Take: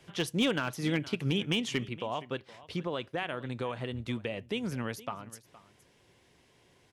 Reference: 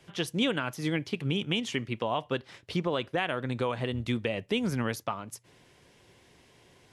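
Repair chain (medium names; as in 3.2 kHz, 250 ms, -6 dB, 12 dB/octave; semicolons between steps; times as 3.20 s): clip repair -20.5 dBFS; inverse comb 467 ms -19 dB; gain correction +5 dB, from 1.89 s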